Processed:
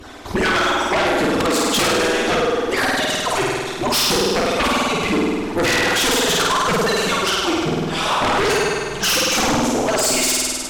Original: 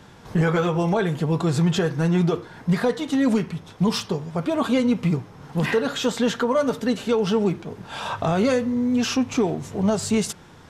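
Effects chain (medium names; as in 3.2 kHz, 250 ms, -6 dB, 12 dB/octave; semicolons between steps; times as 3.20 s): harmonic-percussive separation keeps percussive; flutter echo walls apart 8.7 m, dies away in 1.5 s; sine folder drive 14 dB, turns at -10 dBFS; trim -4 dB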